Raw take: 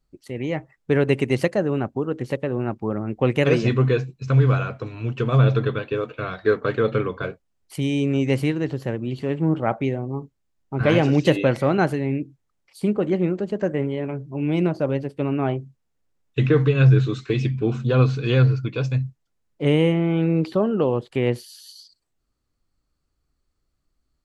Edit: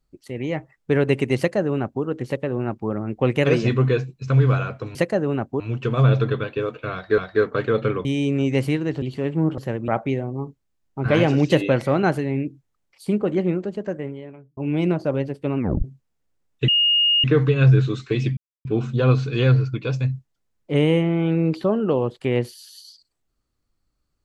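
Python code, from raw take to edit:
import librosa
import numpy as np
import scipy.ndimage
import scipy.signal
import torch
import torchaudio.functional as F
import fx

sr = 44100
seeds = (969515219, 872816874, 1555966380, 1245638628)

y = fx.edit(x, sr, fx.duplicate(start_s=1.38, length_s=0.65, to_s=4.95),
    fx.repeat(start_s=6.28, length_s=0.25, count=2),
    fx.cut(start_s=7.15, length_s=0.65),
    fx.move(start_s=8.77, length_s=0.3, to_s=9.63),
    fx.fade_out_span(start_s=13.21, length_s=1.11),
    fx.tape_stop(start_s=15.33, length_s=0.26),
    fx.insert_tone(at_s=16.43, length_s=0.56, hz=2850.0, db=-14.5),
    fx.insert_silence(at_s=17.56, length_s=0.28), tone=tone)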